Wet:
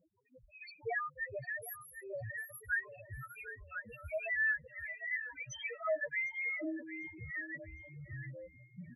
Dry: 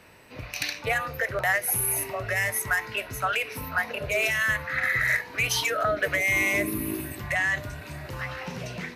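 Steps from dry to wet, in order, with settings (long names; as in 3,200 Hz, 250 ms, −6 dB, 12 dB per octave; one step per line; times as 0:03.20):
spectral peaks only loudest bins 1
repeating echo 753 ms, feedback 29%, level −13.5 dB
phaser with staggered stages 1.2 Hz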